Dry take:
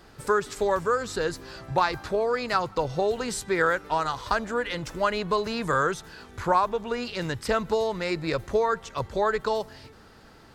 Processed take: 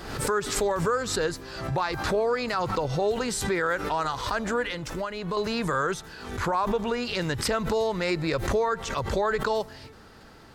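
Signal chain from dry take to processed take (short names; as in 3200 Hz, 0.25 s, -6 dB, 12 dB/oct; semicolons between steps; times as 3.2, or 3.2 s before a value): 4.68–5.37 compressor 6:1, threshold -31 dBFS, peak gain reduction 11.5 dB; limiter -18.5 dBFS, peak gain reduction 8.5 dB; backwards sustainer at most 59 dB/s; gain +1.5 dB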